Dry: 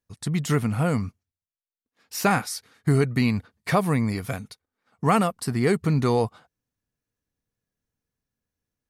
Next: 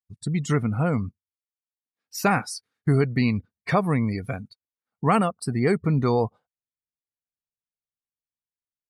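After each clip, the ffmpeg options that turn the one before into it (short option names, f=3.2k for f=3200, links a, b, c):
-af "afftdn=nr=23:nf=-36"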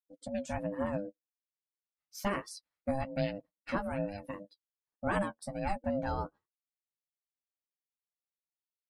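-af "flanger=delay=6.1:depth=6.6:regen=23:speed=1.2:shape=triangular,aeval=exprs='val(0)*sin(2*PI*400*n/s)':c=same,volume=-6dB"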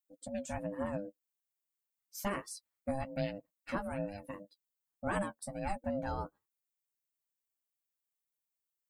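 -af "aexciter=amount=1.2:drive=9.3:freq=6.9k,volume=-3dB"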